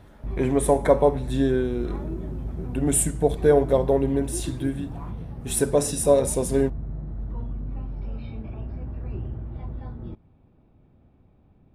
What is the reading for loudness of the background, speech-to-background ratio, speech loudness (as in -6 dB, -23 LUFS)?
-34.5 LUFS, 12.0 dB, -22.5 LUFS